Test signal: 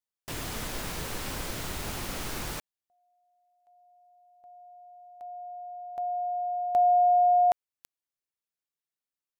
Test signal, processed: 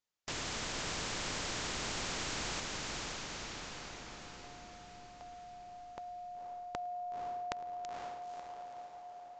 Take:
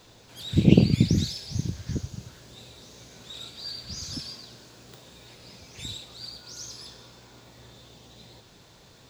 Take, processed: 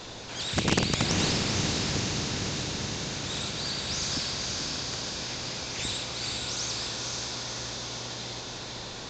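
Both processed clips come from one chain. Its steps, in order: in parallel at -9 dB: wrapped overs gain 11 dB; on the sum: diffused feedback echo 0.504 s, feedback 54%, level -4 dB; downsampling 16000 Hz; spectral compressor 2:1; gain -6.5 dB

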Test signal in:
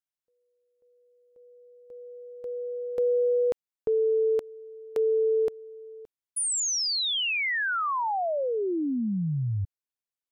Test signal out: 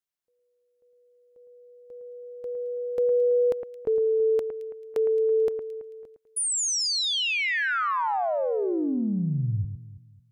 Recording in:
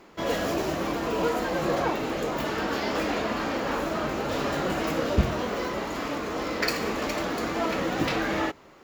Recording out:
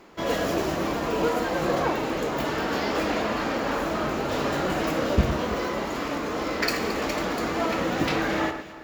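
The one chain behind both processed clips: echo with dull and thin repeats by turns 0.11 s, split 2200 Hz, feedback 59%, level -8 dB; gain +1 dB

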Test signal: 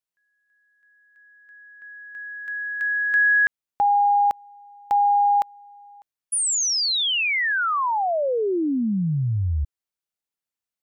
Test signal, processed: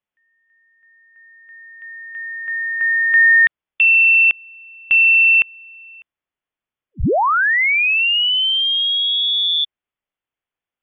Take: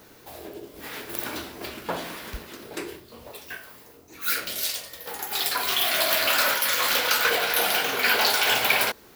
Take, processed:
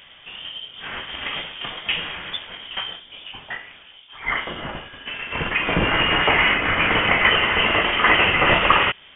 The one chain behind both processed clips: low shelf 410 Hz -3.5 dB; inverted band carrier 3500 Hz; gain +7 dB

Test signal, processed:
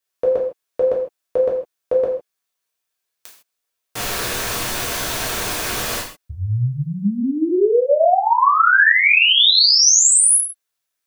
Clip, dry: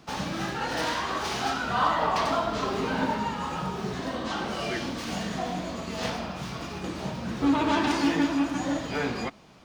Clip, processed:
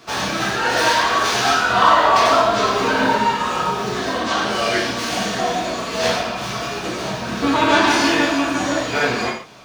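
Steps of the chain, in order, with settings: low shelf 260 Hz -11.5 dB; notch 820 Hz, Q 12; non-linear reverb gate 0.18 s falling, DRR -3.5 dB; gain +8 dB

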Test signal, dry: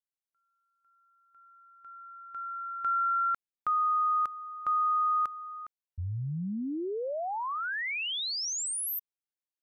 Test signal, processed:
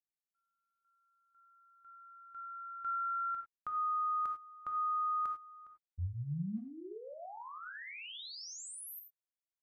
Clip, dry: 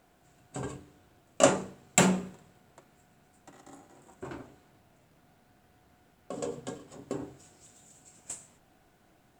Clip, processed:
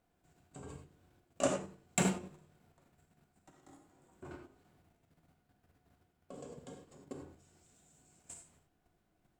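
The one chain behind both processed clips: low shelf 250 Hz +6 dB; level quantiser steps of 10 dB; non-linear reverb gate 0.12 s flat, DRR 4 dB; gain -8.5 dB

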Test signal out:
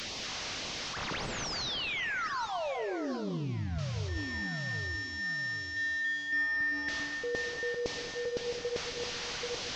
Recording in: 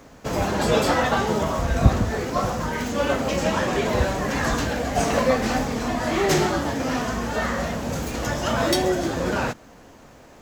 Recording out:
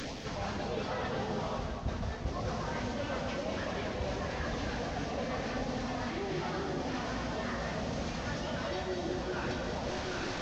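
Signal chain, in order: delta modulation 32 kbps, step -31.5 dBFS; LFO notch sine 1.8 Hz 260–1600 Hz; echo with dull and thin repeats by turns 0.392 s, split 950 Hz, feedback 55%, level -5 dB; reverse; compressor 12:1, threshold -33 dBFS; reverse; non-linear reverb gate 0.26 s rising, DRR 5.5 dB

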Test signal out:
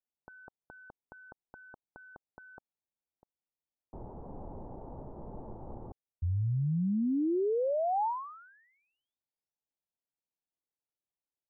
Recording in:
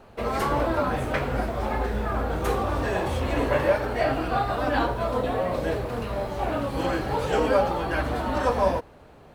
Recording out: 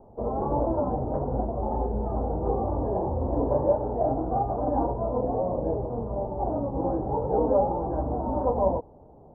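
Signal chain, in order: elliptic low-pass 890 Hz, stop band 80 dB

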